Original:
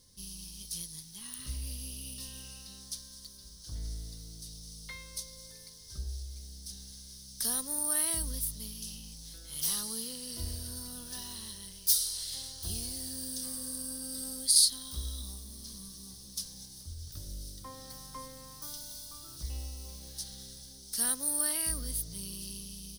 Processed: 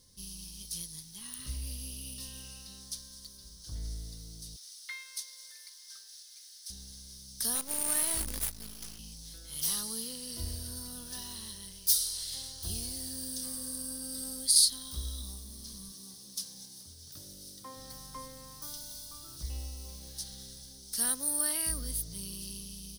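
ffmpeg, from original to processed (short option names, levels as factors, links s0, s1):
-filter_complex "[0:a]asettb=1/sr,asplit=3[s0][s1][s2];[s0]atrim=end=4.564[s3];[s1]atrim=start=4.56:end=6.7,asetpts=PTS-STARTPTS,afade=t=in:d=0.004:c=qsin,afade=t=out:st=2.136:d=0.004:c=qsin,highpass=f=1600:t=q:w=1.7[s4];[s2]atrim=start=6.696[s5];[s3][s4]acrossfade=d=0.004:c1=hsin:c2=qsin[s6];[s6][s5]acrossfade=d=0.004:c1=qsin:c2=hsin,asettb=1/sr,asplit=3[s7][s8][s9];[s7]atrim=end=7.554[s10];[s8]atrim=start=7.55:end=8.99,asetpts=PTS-STARTPTS,afade=t=in:d=0.004:c=qsin,afade=t=out:st=1.436:d=0.004:c=qsin,acrusher=bits=6:dc=4:mix=0:aa=0.000001[s11];[s9]atrim=start=8.986[s12];[s10][s11]acrossfade=d=0.004:c1=hsin:c2=qsin[s13];[s13][s12]acrossfade=d=0.004:c1=qsin:c2=hsin,asettb=1/sr,asplit=3[s14][s15][s16];[s14]atrim=end=15.924[s17];[s15]atrim=start=15.92:end=17.76,asetpts=PTS-STARTPTS,afade=t=in:d=0.004:c=qsin,afade=t=out:st=1.836:d=0.004:c=qsin,highpass=170[s18];[s16]atrim=start=17.756[s19];[s17][s18]acrossfade=d=0.004:c1=hsin:c2=qsin[s20];[s20][s19]acrossfade=d=0.004:c1=qsin:c2=hsin"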